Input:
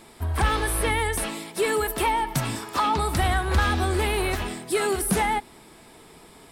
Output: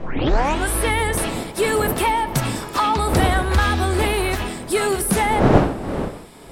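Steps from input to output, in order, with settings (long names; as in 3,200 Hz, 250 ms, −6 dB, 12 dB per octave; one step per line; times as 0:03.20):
turntable start at the beginning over 0.72 s
wind on the microphone 510 Hz −29 dBFS
level +4 dB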